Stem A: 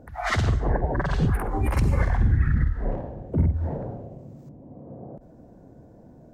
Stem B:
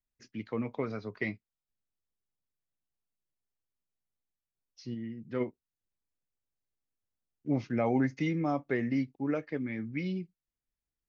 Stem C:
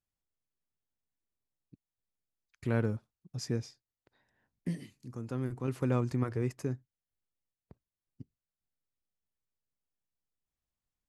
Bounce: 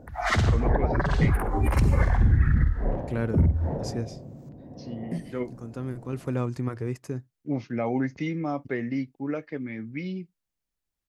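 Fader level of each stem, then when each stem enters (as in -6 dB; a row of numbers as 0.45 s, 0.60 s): +0.5 dB, +1.0 dB, +1.5 dB; 0.00 s, 0.00 s, 0.45 s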